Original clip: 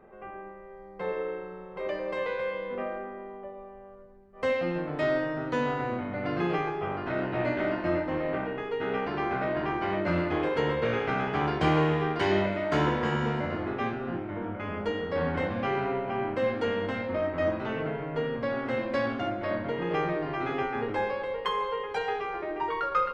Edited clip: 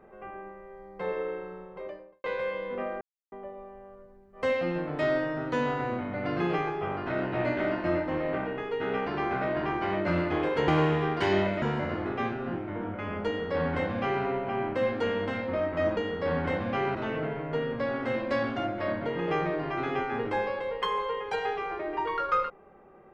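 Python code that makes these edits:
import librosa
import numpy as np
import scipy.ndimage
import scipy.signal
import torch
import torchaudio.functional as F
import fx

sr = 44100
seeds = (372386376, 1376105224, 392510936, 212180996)

y = fx.studio_fade_out(x, sr, start_s=1.48, length_s=0.76)
y = fx.edit(y, sr, fx.silence(start_s=3.01, length_s=0.31),
    fx.cut(start_s=10.68, length_s=0.99),
    fx.cut(start_s=12.61, length_s=0.62),
    fx.duplicate(start_s=14.87, length_s=0.98, to_s=17.58), tone=tone)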